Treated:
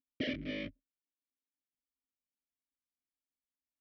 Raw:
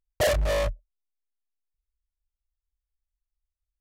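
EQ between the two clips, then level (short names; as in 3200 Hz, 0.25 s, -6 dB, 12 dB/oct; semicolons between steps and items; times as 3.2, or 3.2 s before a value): vowel filter i; elliptic low-pass 5500 Hz; bell 230 Hz +11 dB 2.1 oct; +2.5 dB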